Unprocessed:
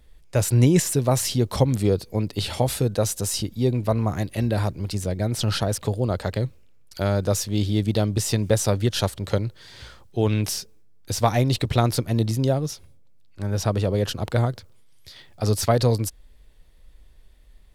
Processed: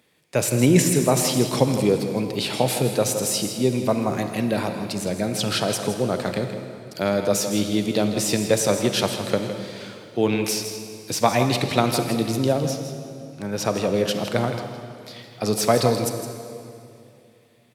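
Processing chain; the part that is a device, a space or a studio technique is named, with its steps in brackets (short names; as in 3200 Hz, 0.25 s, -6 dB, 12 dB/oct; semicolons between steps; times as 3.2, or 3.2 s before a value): PA in a hall (HPF 150 Hz 24 dB/oct; bell 2400 Hz +6 dB 0.27 oct; echo 0.162 s -10.5 dB; reverb RT60 2.6 s, pre-delay 33 ms, DRR 7.5 dB); gain +2 dB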